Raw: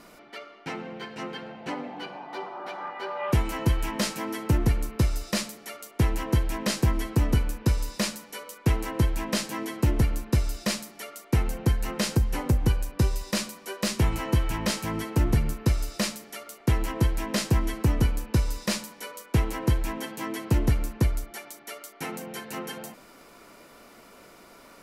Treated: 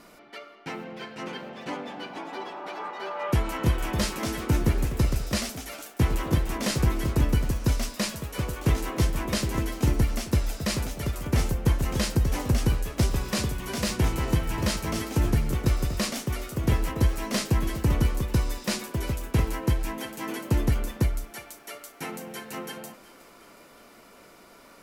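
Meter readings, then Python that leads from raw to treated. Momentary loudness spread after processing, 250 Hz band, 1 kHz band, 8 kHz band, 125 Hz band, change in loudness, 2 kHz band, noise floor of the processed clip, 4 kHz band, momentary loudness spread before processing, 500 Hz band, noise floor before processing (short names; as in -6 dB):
12 LU, 0.0 dB, 0.0 dB, +0.5 dB, 0.0 dB, 0.0 dB, +0.5 dB, -52 dBFS, 0.0 dB, 13 LU, +0.5 dB, -52 dBFS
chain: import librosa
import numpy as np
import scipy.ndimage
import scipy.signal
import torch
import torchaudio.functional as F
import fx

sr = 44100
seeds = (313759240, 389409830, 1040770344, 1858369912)

y = fx.echo_thinned(x, sr, ms=365, feedback_pct=60, hz=420.0, wet_db=-18.5)
y = fx.echo_pitch(y, sr, ms=672, semitones=2, count=3, db_per_echo=-6.0)
y = F.gain(torch.from_numpy(y), -1.0).numpy()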